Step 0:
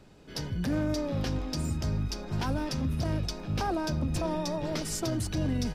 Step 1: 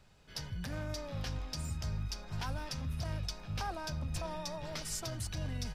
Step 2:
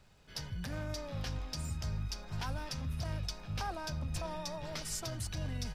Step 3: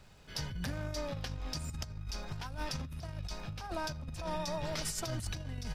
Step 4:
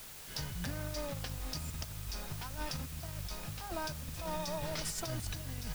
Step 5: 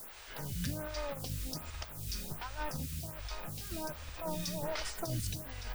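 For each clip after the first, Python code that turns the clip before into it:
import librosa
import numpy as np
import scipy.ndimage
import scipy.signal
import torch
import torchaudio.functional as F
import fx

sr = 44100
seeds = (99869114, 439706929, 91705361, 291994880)

y1 = fx.peak_eq(x, sr, hz=310.0, db=-14.0, octaves=1.6)
y1 = y1 * 10.0 ** (-4.0 / 20.0)
y2 = fx.dmg_crackle(y1, sr, seeds[0], per_s=130.0, level_db=-61.0)
y3 = fx.over_compress(y2, sr, threshold_db=-40.0, ratio=-0.5)
y3 = y3 * 10.0 ** (2.5 / 20.0)
y4 = fx.quant_dither(y3, sr, seeds[1], bits=8, dither='triangular')
y4 = y4 * 10.0 ** (-1.5 / 20.0)
y5 = fx.stagger_phaser(y4, sr, hz=1.3)
y5 = y5 * 10.0 ** (4.0 / 20.0)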